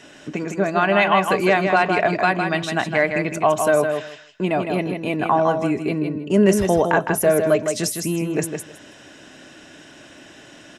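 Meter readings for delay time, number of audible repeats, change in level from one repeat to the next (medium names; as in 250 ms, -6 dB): 159 ms, 2, -15.5 dB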